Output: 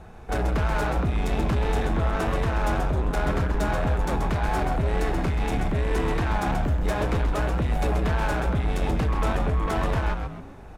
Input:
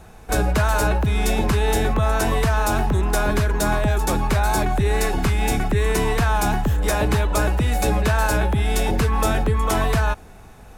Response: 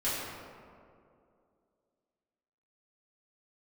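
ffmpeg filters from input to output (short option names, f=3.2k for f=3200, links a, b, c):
-filter_complex "[0:a]lowpass=f=2k:p=1,asoftclip=type=tanh:threshold=-21.5dB,asplit=5[a][b][c][d][e];[b]adelay=132,afreqshift=-110,volume=-6dB[f];[c]adelay=264,afreqshift=-220,volume=-14.6dB[g];[d]adelay=396,afreqshift=-330,volume=-23.3dB[h];[e]adelay=528,afreqshift=-440,volume=-31.9dB[i];[a][f][g][h][i]amix=inputs=5:normalize=0"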